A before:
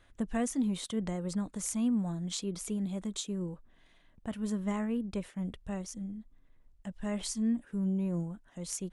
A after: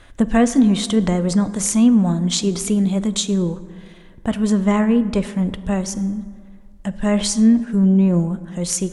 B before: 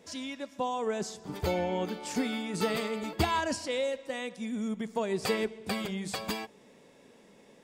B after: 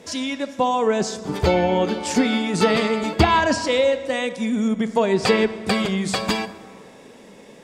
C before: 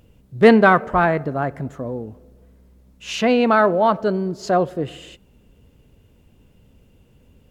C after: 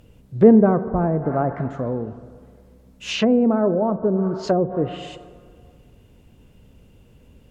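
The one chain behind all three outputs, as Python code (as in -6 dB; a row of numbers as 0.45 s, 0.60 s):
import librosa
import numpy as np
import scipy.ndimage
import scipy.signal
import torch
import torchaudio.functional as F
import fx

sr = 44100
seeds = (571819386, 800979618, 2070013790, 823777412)

y = fx.rev_plate(x, sr, seeds[0], rt60_s=1.9, hf_ratio=0.45, predelay_ms=0, drr_db=12.5)
y = fx.env_lowpass_down(y, sr, base_hz=440.0, full_db=-15.5)
y = librosa.util.normalize(y) * 10.0 ** (-2 / 20.0)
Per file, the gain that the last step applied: +16.5 dB, +12.0 dB, +2.5 dB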